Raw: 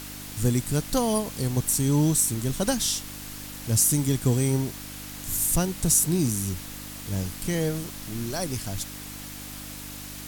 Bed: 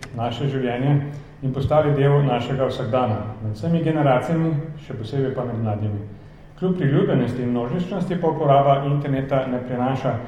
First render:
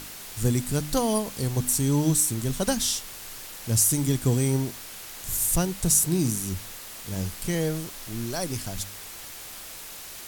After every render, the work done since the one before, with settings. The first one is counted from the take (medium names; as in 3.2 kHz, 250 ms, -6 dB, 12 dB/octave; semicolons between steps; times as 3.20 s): de-hum 50 Hz, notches 6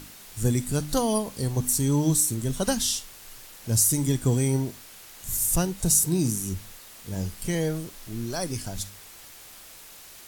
noise print and reduce 6 dB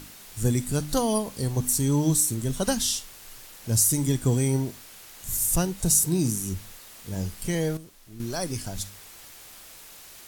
7.77–8.20 s: gain -10 dB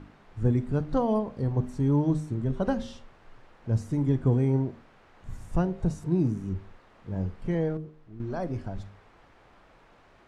low-pass 1.3 kHz 12 dB/octave; de-hum 77.1 Hz, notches 10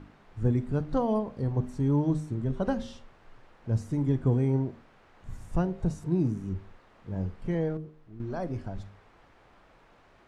trim -1.5 dB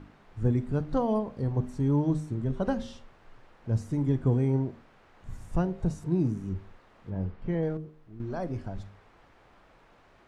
7.10–7.63 s: distance through air 150 m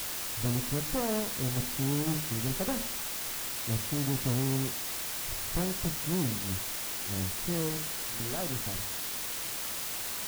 valve stage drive 26 dB, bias 0.7; word length cut 6-bit, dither triangular